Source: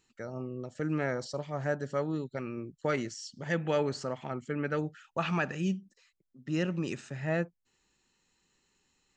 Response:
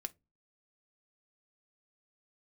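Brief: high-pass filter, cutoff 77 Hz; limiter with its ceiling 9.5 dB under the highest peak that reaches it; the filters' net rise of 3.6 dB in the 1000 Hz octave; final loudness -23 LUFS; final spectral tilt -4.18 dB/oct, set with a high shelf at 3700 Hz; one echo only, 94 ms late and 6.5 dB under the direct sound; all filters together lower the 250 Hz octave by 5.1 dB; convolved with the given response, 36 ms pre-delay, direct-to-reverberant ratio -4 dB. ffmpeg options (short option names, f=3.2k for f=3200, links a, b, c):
-filter_complex "[0:a]highpass=77,equalizer=f=250:t=o:g=-8.5,equalizer=f=1k:t=o:g=4.5,highshelf=f=3.7k:g=8,alimiter=limit=-24dB:level=0:latency=1,aecho=1:1:94:0.473,asplit=2[a][b];[1:a]atrim=start_sample=2205,adelay=36[c];[b][c]afir=irnorm=-1:irlink=0,volume=6.5dB[d];[a][d]amix=inputs=2:normalize=0,volume=8dB"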